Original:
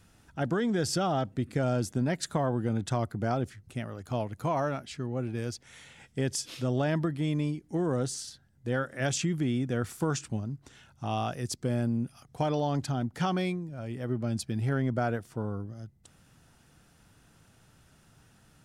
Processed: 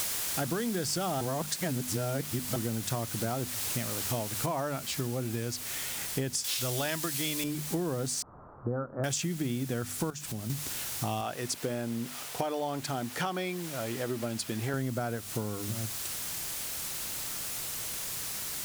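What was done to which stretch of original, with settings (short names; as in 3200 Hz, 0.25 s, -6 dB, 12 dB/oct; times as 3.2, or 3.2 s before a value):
1.21–2.56 reverse
4.46 noise floor step -41 dB -48 dB
6.44–7.44 EQ curve 110 Hz 0 dB, 170 Hz -7 dB, 4300 Hz +11 dB
8.22–9.04 Chebyshev low-pass 1300 Hz, order 5
10.1–10.5 compressor 3:1, threshold -42 dBFS
11.21–14.74 tone controls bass -11 dB, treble -6 dB
whole clip: bell 9200 Hz +5 dB 2.1 oct; notches 50/100/150/200/250 Hz; compressor 6:1, threshold -38 dBFS; gain +8.5 dB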